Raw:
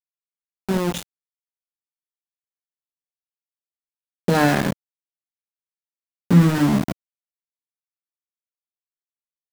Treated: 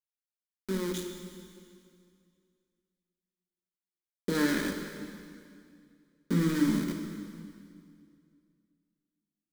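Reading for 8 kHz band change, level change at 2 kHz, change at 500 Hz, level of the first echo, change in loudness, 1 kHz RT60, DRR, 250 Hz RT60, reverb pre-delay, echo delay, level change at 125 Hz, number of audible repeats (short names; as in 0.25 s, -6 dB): -6.5 dB, -9.5 dB, -10.0 dB, none, -12.0 dB, 2.2 s, 3.5 dB, 2.5 s, 4 ms, none, -15.0 dB, none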